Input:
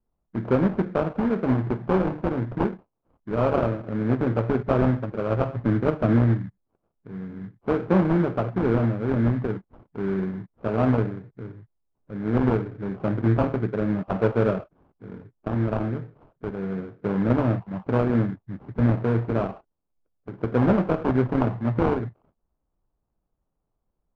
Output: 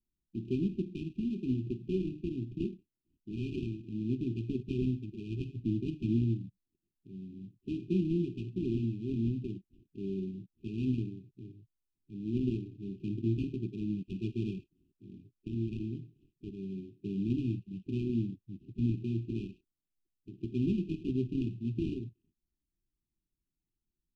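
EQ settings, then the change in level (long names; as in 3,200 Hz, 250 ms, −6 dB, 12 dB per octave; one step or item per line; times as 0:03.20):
linear-phase brick-wall band-stop 400–2,400 Hz
low-shelf EQ 320 Hz −5 dB
−6.0 dB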